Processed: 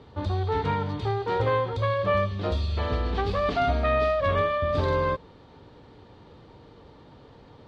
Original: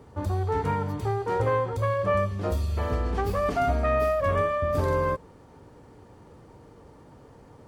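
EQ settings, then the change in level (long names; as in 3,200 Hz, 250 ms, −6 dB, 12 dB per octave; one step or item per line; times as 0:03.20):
low-pass with resonance 3,800 Hz, resonance Q 3.9
0.0 dB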